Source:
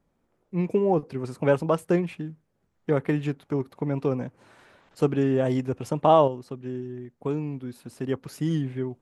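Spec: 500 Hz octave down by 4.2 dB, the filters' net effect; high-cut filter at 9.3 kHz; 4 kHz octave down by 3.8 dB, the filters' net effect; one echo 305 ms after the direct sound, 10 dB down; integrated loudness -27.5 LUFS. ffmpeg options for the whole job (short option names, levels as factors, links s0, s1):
-af "lowpass=9300,equalizer=f=500:t=o:g=-5.5,equalizer=f=4000:t=o:g=-5.5,aecho=1:1:305:0.316,volume=1.12"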